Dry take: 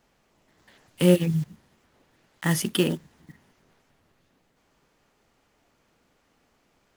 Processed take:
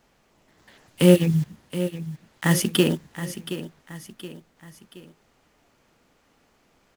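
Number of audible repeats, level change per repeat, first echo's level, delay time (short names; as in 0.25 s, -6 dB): 3, -7.0 dB, -12.0 dB, 0.723 s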